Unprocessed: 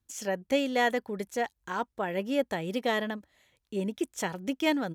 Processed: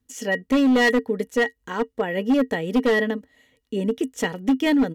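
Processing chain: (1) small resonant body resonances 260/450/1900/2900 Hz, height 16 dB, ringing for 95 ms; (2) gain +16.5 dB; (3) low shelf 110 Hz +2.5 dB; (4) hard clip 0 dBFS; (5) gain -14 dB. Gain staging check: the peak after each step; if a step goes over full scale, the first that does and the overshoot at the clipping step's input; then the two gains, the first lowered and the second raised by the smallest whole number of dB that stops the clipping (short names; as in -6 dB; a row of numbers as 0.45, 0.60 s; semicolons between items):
-6.5, +10.0, +10.0, 0.0, -14.0 dBFS; step 2, 10.0 dB; step 2 +6.5 dB, step 5 -4 dB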